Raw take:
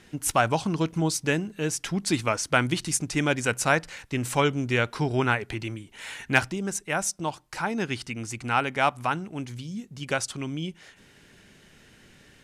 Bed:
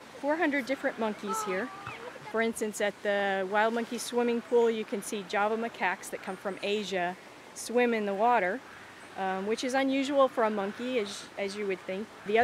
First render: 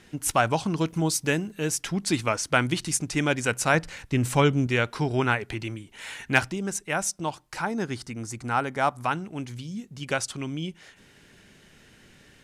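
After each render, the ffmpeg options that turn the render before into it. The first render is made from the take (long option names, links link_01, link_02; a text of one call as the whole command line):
ffmpeg -i in.wav -filter_complex "[0:a]asettb=1/sr,asplit=3[link_01][link_02][link_03];[link_01]atrim=end=0.774[link_04];[link_02]atrim=start=0.77:end=1.81,asetpts=PTS-STARTPTS,afade=type=in:duration=0.004:curve=qsin,afade=type=out:start_time=1.036:duration=0.004:curve=qsin,highshelf=frequency=12000:gain=11[link_05];[link_03]atrim=start=1.806[link_06];[link_04][link_05]acrossfade=duration=0.004:curve1=hsin:curve2=qsin[link_07];[link_07][link_06]acrossfade=duration=0.004:curve1=qsin:curve2=hsin,asettb=1/sr,asplit=3[link_08][link_09][link_10];[link_08]atrim=end=3.744[link_11];[link_09]atrim=start=3.74:end=4.67,asetpts=PTS-STARTPTS,afade=type=in:duration=0.004:curve=qsin,afade=type=out:start_time=0.926:duration=0.004:curve=qsin,lowshelf=frequency=270:gain=7.5[link_12];[link_10]atrim=start=4.666[link_13];[link_11][link_12]acrossfade=duration=0.004:curve1=hsin:curve2=qsin[link_14];[link_14][link_13]acrossfade=duration=0.004:curve1=qsin:curve2=hsin,asettb=1/sr,asplit=3[link_15][link_16][link_17];[link_15]atrim=end=7.654[link_18];[link_16]atrim=start=7.65:end=9.05,asetpts=PTS-STARTPTS,afade=type=in:duration=0.004:curve=qsin,afade=type=out:start_time=1.396:duration=0.004:curve=qsin,equalizer=frequency=2700:width=1.8:gain=-10[link_19];[link_17]atrim=start=9.046[link_20];[link_18][link_19]acrossfade=duration=0.004:curve1=hsin:curve2=qsin[link_21];[link_21][link_20]acrossfade=duration=0.004:curve1=qsin:curve2=hsin" out.wav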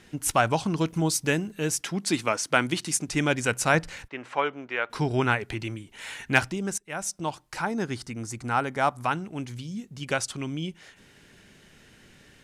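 ffmpeg -i in.wav -filter_complex "[0:a]asettb=1/sr,asplit=3[link_01][link_02][link_03];[link_01]atrim=end=1.814[link_04];[link_02]atrim=start=1.81:end=3.09,asetpts=PTS-STARTPTS,afade=type=in:duration=0.004:curve=qsin,afade=type=out:start_time=1.276:duration=0.004:curve=qsin,highpass=170[link_05];[link_03]atrim=start=3.086[link_06];[link_04][link_05]acrossfade=duration=0.004:curve1=hsin:curve2=qsin[link_07];[link_07][link_06]acrossfade=duration=0.004:curve1=qsin:curve2=hsin,asplit=3[link_08][link_09][link_10];[link_08]afade=type=out:start_time=4.07:duration=0.02[link_11];[link_09]highpass=630,lowpass=2100,afade=type=in:start_time=4.07:duration=0.02,afade=type=out:start_time=4.89:duration=0.02[link_12];[link_10]afade=type=in:start_time=4.89:duration=0.02[link_13];[link_11][link_12][link_13]amix=inputs=3:normalize=0,asplit=2[link_14][link_15];[link_14]atrim=end=6.78,asetpts=PTS-STARTPTS,afade=type=out:start_time=6.776:duration=0.004:curve=hsin:silence=0.0944061[link_16];[link_15]atrim=start=6.78,asetpts=PTS-STARTPTS,afade=type=in:duration=0.64:curve=qsin:silence=0.0944061[link_17];[link_16][link_17]concat=n=2:v=0:a=1" out.wav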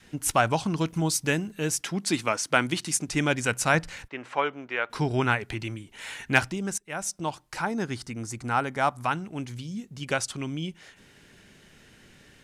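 ffmpeg -i in.wav -af "adynamicequalizer=threshold=0.0126:dfrequency=420:dqfactor=1.3:tfrequency=420:tqfactor=1.3:attack=5:release=100:ratio=0.375:range=2:mode=cutabove:tftype=bell" out.wav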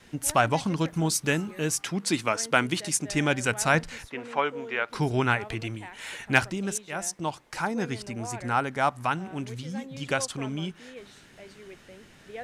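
ffmpeg -i in.wav -i bed.wav -filter_complex "[1:a]volume=-14.5dB[link_01];[0:a][link_01]amix=inputs=2:normalize=0" out.wav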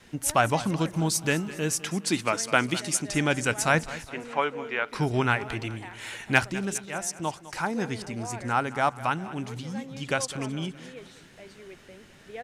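ffmpeg -i in.wav -af "aecho=1:1:205|410|615|820:0.15|0.0718|0.0345|0.0165" out.wav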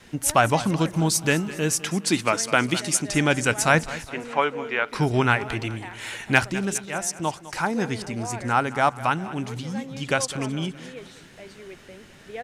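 ffmpeg -i in.wav -af "volume=4dB,alimiter=limit=-3dB:level=0:latency=1" out.wav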